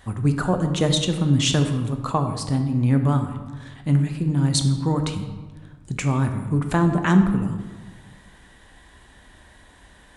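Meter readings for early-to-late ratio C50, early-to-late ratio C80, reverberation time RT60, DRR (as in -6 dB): 8.0 dB, 10.0 dB, 1.4 s, 5.5 dB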